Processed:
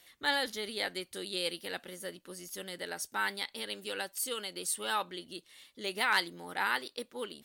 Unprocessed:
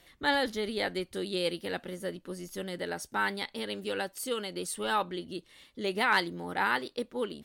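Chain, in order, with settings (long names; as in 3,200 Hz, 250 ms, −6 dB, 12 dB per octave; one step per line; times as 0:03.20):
spectral tilt +2.5 dB per octave
level −4 dB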